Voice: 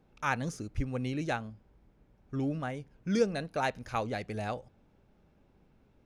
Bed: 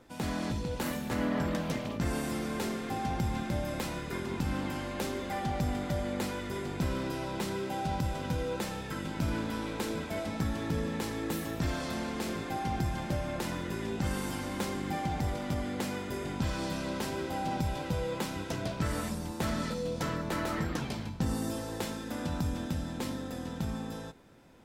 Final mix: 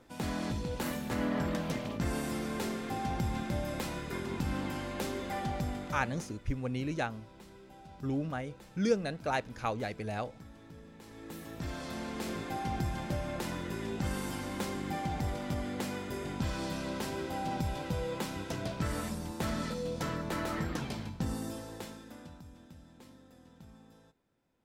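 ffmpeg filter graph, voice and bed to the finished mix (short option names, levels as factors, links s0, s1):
-filter_complex "[0:a]adelay=5700,volume=0.891[s0];[1:a]volume=6.31,afade=t=out:st=5.4:d=0.96:silence=0.125893,afade=t=in:st=10.98:d=1.37:silence=0.133352,afade=t=out:st=21.01:d=1.4:silence=0.133352[s1];[s0][s1]amix=inputs=2:normalize=0"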